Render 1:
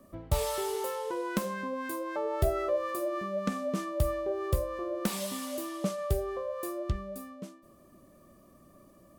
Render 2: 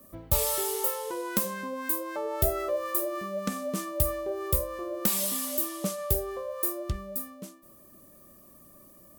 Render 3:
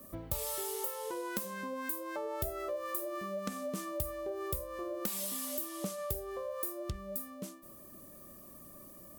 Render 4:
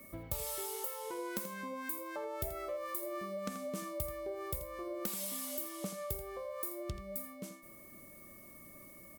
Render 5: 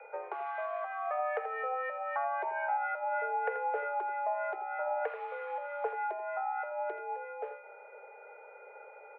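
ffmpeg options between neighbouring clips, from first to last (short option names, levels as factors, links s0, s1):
-af "aemphasis=mode=production:type=50fm"
-af "acompressor=threshold=0.0112:ratio=3,volume=1.19"
-af "aeval=exprs='val(0)+0.00158*sin(2*PI*2200*n/s)':c=same,aecho=1:1:83:0.266,volume=0.75"
-af "highpass=f=180:t=q:w=0.5412,highpass=f=180:t=q:w=1.307,lowpass=f=2000:t=q:w=0.5176,lowpass=f=2000:t=q:w=0.7071,lowpass=f=2000:t=q:w=1.932,afreqshift=250,volume=2.51"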